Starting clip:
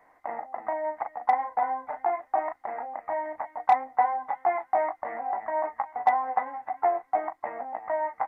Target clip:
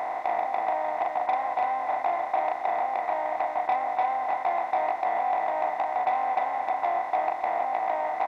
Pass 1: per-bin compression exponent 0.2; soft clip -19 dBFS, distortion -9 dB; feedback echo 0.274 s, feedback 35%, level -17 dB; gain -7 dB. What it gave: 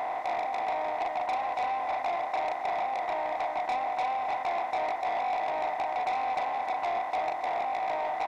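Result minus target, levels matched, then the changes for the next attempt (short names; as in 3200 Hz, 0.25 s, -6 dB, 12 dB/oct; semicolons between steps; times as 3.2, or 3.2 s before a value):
soft clip: distortion +10 dB
change: soft clip -9.5 dBFS, distortion -20 dB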